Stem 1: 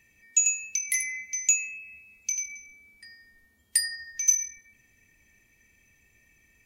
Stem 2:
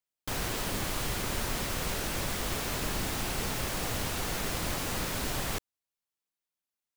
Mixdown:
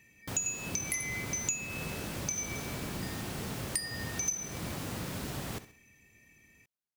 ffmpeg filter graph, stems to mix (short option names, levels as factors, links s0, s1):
-filter_complex "[0:a]lowshelf=f=130:g=-11.5,volume=1.06[s0];[1:a]highpass=f=100:p=1,volume=0.422,asplit=2[s1][s2];[s2]volume=0.188,aecho=0:1:65|130|195|260|325:1|0.38|0.144|0.0549|0.0209[s3];[s0][s1][s3]amix=inputs=3:normalize=0,equalizer=f=130:w=0.42:g=10,acompressor=threshold=0.0251:ratio=4"